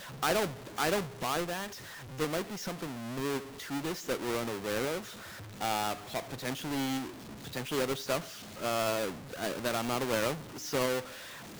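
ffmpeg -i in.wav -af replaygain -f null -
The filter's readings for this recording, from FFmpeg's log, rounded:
track_gain = +13.8 dB
track_peak = 0.077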